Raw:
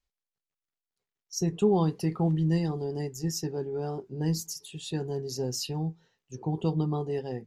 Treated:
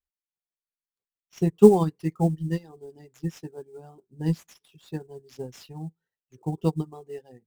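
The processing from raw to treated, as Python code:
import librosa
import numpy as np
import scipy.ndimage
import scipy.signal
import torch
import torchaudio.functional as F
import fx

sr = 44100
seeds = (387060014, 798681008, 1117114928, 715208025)

p1 = fx.dereverb_blind(x, sr, rt60_s=1.9)
p2 = fx.sample_hold(p1, sr, seeds[0], rate_hz=8600.0, jitter_pct=20)
p3 = p1 + (p2 * 10.0 ** (-4.0 / 20.0))
p4 = fx.upward_expand(p3, sr, threshold_db=-31.0, expansion=2.5)
y = p4 * 10.0 ** (8.5 / 20.0)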